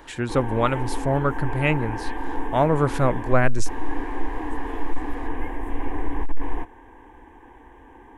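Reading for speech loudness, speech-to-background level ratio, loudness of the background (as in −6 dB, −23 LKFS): −23.5 LKFS, 9.0 dB, −32.5 LKFS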